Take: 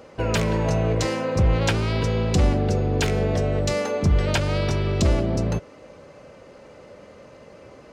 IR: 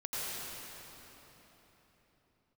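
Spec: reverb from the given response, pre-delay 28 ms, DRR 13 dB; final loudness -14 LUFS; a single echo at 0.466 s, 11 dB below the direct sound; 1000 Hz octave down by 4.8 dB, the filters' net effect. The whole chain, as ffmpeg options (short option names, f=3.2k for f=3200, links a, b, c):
-filter_complex "[0:a]equalizer=f=1k:t=o:g=-6.5,aecho=1:1:466:0.282,asplit=2[a][b];[1:a]atrim=start_sample=2205,adelay=28[c];[b][c]afir=irnorm=-1:irlink=0,volume=-18dB[d];[a][d]amix=inputs=2:normalize=0,volume=9dB"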